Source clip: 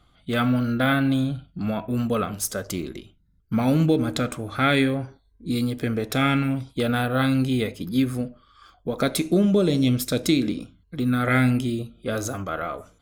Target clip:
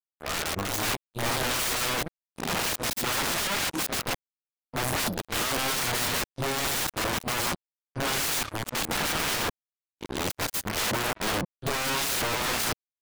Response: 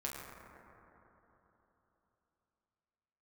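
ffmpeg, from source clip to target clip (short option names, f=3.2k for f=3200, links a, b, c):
-af "areverse,aeval=exprs='(mod(16.8*val(0)+1,2)-1)/16.8':c=same,acrusher=bits=4:mix=0:aa=0.5"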